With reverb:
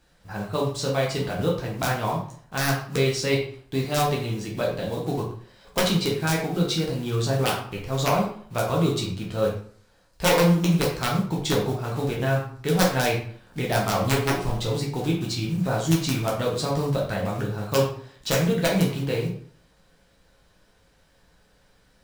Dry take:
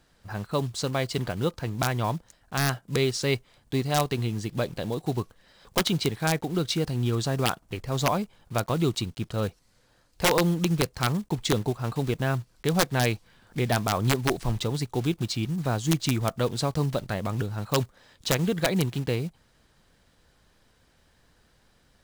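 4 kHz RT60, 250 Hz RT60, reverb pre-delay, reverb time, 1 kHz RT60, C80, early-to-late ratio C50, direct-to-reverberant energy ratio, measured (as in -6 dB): 0.40 s, 0.60 s, 8 ms, 0.55 s, 0.55 s, 9.0 dB, 4.5 dB, -3.5 dB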